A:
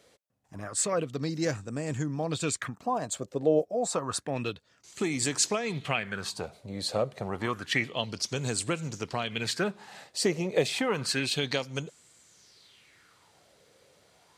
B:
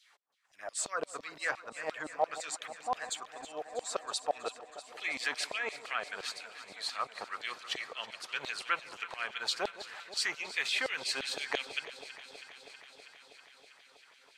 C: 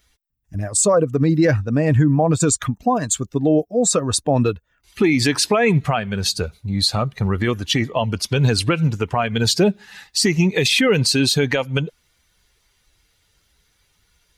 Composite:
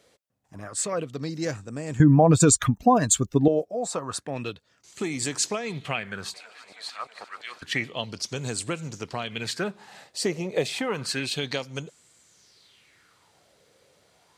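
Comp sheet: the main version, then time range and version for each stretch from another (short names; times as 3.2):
A
2–3.48 from C
6.34–7.62 from B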